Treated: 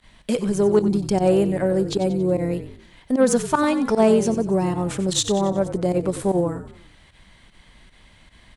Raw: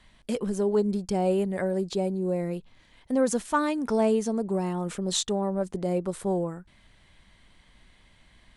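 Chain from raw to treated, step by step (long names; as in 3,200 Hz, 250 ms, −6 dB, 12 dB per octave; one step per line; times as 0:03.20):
harmonic generator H 4 −31 dB, 6 −30 dB, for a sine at −12.5 dBFS
fake sidechain pumping 152 BPM, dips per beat 1, −20 dB, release 68 ms
echo with shifted repeats 92 ms, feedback 47%, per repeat −42 Hz, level −12 dB
level +7 dB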